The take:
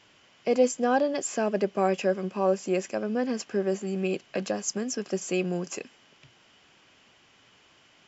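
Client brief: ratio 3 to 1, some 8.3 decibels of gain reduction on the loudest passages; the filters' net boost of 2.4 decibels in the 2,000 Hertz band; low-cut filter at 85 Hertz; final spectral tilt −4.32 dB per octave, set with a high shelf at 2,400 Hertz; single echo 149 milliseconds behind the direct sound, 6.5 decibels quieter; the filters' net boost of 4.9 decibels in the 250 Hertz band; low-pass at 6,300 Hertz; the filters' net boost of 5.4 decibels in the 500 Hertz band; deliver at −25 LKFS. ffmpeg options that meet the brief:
ffmpeg -i in.wav -af "highpass=85,lowpass=6300,equalizer=frequency=250:width_type=o:gain=5,equalizer=frequency=500:width_type=o:gain=5,equalizer=frequency=2000:width_type=o:gain=5,highshelf=frequency=2400:gain=-4,acompressor=threshold=-21dB:ratio=3,aecho=1:1:149:0.473,volume=1dB" out.wav

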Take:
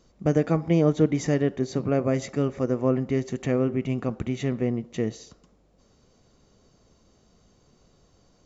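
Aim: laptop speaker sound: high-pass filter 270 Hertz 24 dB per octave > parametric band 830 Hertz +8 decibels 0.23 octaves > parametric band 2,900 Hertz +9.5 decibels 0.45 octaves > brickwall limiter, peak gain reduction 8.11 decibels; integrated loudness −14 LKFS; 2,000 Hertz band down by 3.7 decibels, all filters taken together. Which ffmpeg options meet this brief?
ffmpeg -i in.wav -af "highpass=frequency=270:width=0.5412,highpass=frequency=270:width=1.3066,equalizer=frequency=830:width_type=o:width=0.23:gain=8,equalizer=frequency=2000:width_type=o:gain=-7.5,equalizer=frequency=2900:width_type=o:width=0.45:gain=9.5,volume=17dB,alimiter=limit=-2dB:level=0:latency=1" out.wav

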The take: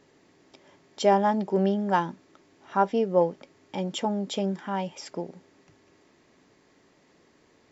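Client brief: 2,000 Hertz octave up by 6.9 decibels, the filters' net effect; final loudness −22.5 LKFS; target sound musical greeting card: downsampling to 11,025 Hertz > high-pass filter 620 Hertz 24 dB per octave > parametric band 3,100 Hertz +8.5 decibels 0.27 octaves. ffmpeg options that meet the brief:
ffmpeg -i in.wav -af "equalizer=frequency=2000:width_type=o:gain=8.5,aresample=11025,aresample=44100,highpass=frequency=620:width=0.5412,highpass=frequency=620:width=1.3066,equalizer=frequency=3100:width_type=o:width=0.27:gain=8.5,volume=6dB" out.wav

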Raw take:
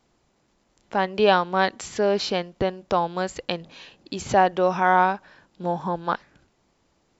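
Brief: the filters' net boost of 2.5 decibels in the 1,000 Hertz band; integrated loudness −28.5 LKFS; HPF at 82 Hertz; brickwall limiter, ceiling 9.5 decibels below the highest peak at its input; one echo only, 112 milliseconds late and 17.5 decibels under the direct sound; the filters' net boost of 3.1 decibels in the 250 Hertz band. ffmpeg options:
ffmpeg -i in.wav -af "highpass=82,equalizer=frequency=250:width_type=o:gain=5,equalizer=frequency=1000:width_type=o:gain=3,alimiter=limit=-11.5dB:level=0:latency=1,aecho=1:1:112:0.133,volume=-3.5dB" out.wav

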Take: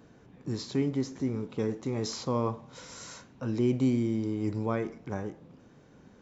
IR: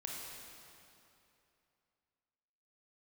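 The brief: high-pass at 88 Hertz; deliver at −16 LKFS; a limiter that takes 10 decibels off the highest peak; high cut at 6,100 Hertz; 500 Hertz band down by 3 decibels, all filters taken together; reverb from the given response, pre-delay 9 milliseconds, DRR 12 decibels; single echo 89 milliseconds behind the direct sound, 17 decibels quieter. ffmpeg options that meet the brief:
-filter_complex "[0:a]highpass=88,lowpass=6100,equalizer=frequency=500:width_type=o:gain=-4,alimiter=level_in=3.5dB:limit=-24dB:level=0:latency=1,volume=-3.5dB,aecho=1:1:89:0.141,asplit=2[link_01][link_02];[1:a]atrim=start_sample=2205,adelay=9[link_03];[link_02][link_03]afir=irnorm=-1:irlink=0,volume=-11.5dB[link_04];[link_01][link_04]amix=inputs=2:normalize=0,volume=21.5dB"

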